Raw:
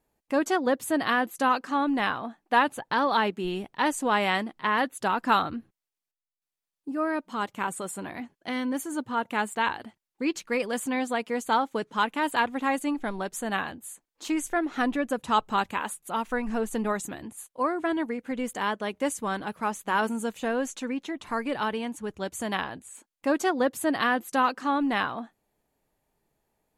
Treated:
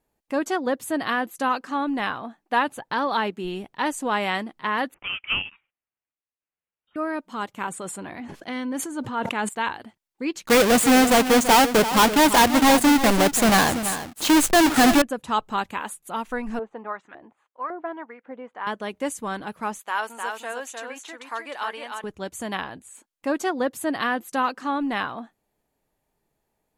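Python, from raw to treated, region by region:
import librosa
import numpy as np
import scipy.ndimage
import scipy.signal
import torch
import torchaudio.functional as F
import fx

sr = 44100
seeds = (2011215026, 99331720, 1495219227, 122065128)

y = fx.chain(x, sr, fx.highpass(hz=1100.0, slope=24),
    fx.freq_invert(carrier_hz=4000), at=(4.94, 6.96))
y = fx.chain(y, sr, fx.lowpass(hz=12000.0, slope=12),
    fx.high_shelf(hz=9300.0, db=-7.5),
    fx.sustainer(db_per_s=40.0), at=(7.69, 9.49))
y = fx.chain(y, sr, fx.halfwave_hold(),
    fx.leveller(passes=3),
    fx.echo_single(ms=336, db=-11.5), at=(10.46, 15.02))
y = fx.chain(y, sr, fx.lowpass(hz=3100.0, slope=12),
    fx.filter_lfo_bandpass(shape='saw_up', hz=1.8, low_hz=590.0, high_hz=1700.0, q=1.3), at=(16.59, 18.67))
y = fx.chain(y, sr, fx.highpass(hz=670.0, slope=12),
    fx.echo_single(ms=306, db=-4.5), at=(19.79, 22.04))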